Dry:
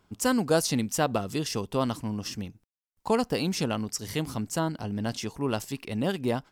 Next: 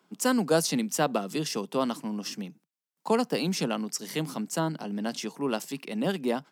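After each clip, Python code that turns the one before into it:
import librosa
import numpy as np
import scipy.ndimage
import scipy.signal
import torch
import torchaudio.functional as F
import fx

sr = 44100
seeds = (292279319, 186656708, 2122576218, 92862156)

y = scipy.signal.sosfilt(scipy.signal.butter(12, 150.0, 'highpass', fs=sr, output='sos'), x)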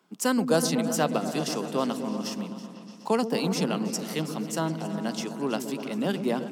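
y = fx.echo_opening(x, sr, ms=124, hz=400, octaves=1, feedback_pct=70, wet_db=-6)
y = fx.echo_warbled(y, sr, ms=323, feedback_pct=36, rate_hz=2.8, cents=58, wet_db=-16)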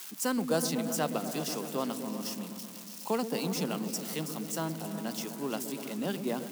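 y = x + 0.5 * 10.0 ** (-27.0 / 20.0) * np.diff(np.sign(x), prepend=np.sign(x[:1]))
y = F.gain(torch.from_numpy(y), -6.0).numpy()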